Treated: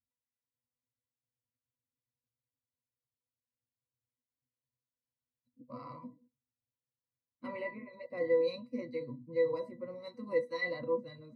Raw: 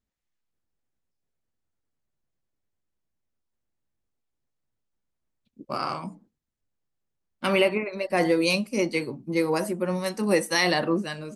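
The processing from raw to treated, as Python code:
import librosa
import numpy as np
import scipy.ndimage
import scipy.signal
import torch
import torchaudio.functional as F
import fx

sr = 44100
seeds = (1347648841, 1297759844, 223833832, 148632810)

y = fx.spec_quant(x, sr, step_db=15)
y = fx.octave_resonator(y, sr, note='B', decay_s=0.14)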